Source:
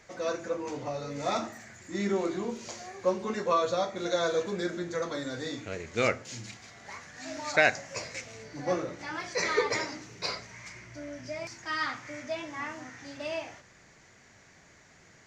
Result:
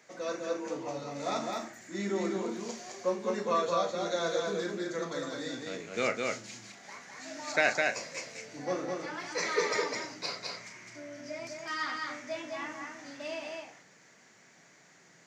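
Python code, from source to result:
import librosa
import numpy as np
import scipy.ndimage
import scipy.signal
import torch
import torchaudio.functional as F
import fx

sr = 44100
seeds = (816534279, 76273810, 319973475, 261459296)

y = scipy.signal.sosfilt(scipy.signal.butter(4, 150.0, 'highpass', fs=sr, output='sos'), x)
y = fx.high_shelf(y, sr, hz=7700.0, db=4.0)
y = fx.doubler(y, sr, ms=36.0, db=-11)
y = y + 10.0 ** (-3.0 / 20.0) * np.pad(y, (int(208 * sr / 1000.0), 0))[:len(y)]
y = y * 10.0 ** (-4.0 / 20.0)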